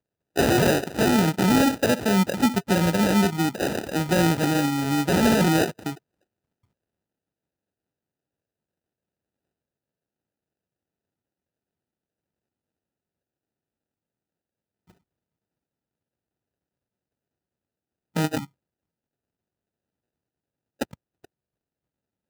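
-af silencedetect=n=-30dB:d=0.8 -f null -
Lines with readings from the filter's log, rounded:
silence_start: 5.93
silence_end: 18.16 | silence_duration: 12.23
silence_start: 18.45
silence_end: 20.81 | silence_duration: 2.37
silence_start: 20.94
silence_end: 22.30 | silence_duration: 1.36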